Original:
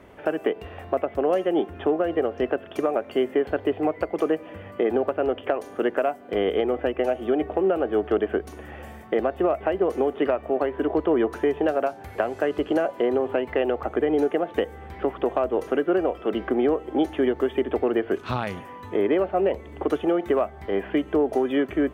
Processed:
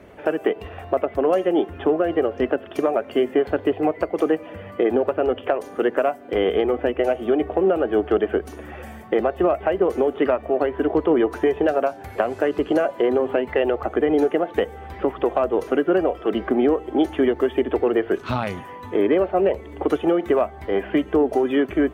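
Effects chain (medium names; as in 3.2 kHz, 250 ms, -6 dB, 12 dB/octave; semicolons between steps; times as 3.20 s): coarse spectral quantiser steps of 15 dB; trim +3.5 dB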